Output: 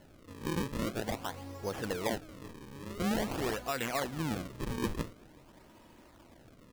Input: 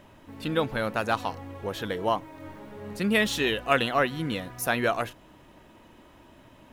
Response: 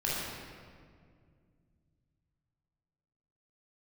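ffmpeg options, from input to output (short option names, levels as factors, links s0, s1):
-filter_complex "[0:a]alimiter=limit=0.119:level=0:latency=1:release=163,acrusher=samples=36:mix=1:aa=0.000001:lfo=1:lforange=57.6:lforate=0.47,asplit=2[s0][s1];[s1]adelay=379,volume=0.0398,highshelf=f=4000:g=-8.53[s2];[s0][s2]amix=inputs=2:normalize=0,volume=0.631"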